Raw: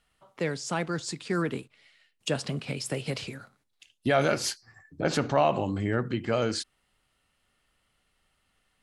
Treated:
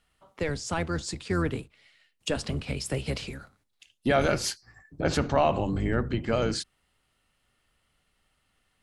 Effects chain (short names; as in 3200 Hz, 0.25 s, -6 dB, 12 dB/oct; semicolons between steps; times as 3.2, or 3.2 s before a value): octaver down 1 oct, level -2 dB